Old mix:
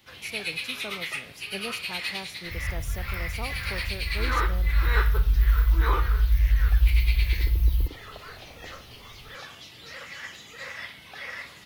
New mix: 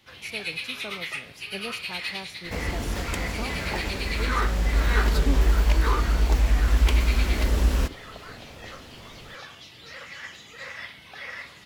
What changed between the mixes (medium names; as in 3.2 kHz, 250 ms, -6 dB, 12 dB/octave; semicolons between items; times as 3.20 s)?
second sound: remove inverse Chebyshev band-stop 640–3600 Hz, stop band 80 dB; master: add treble shelf 11 kHz -8 dB